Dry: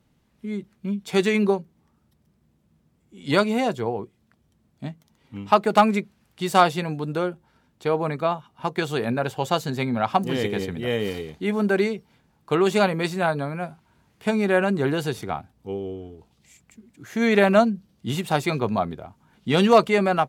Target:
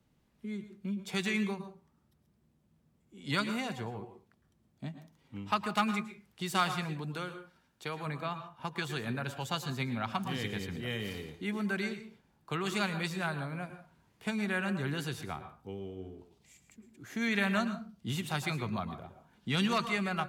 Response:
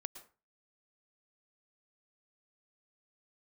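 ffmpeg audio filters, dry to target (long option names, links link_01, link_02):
-filter_complex "[0:a]asettb=1/sr,asplit=3[link_01][link_02][link_03];[link_01]atrim=end=7.144[link_04];[link_02]atrim=start=7.14:end=8.06,asetpts=PTS-STARTPTS,afade=type=in:duration=0.004:curve=qsin,afade=type=out:start_time=0.916:duration=0.004:curve=qsin,tiltshelf=frequency=1200:gain=-4[link_05];[link_03]atrim=start=8.056[link_06];[link_04][link_05]acrossfade=duration=0.004:curve1=hsin:curve2=qsin[link_07];[link_07][link_06]acrossfade=duration=0.004:curve1=qsin:curve2=hsin,acrossover=split=220|1100|2200[link_08][link_09][link_10][link_11];[link_09]acompressor=threshold=-38dB:ratio=5[link_12];[link_08][link_12][link_10][link_11]amix=inputs=4:normalize=0[link_13];[1:a]atrim=start_sample=2205[link_14];[link_13][link_14]afir=irnorm=-1:irlink=0,volume=-3dB"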